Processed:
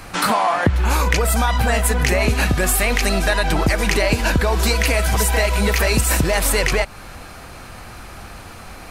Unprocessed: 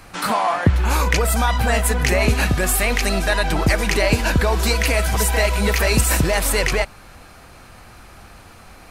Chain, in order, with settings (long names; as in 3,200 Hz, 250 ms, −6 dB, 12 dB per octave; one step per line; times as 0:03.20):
downward compressor 3 to 1, threshold −22 dBFS, peak gain reduction 9.5 dB
level +6.5 dB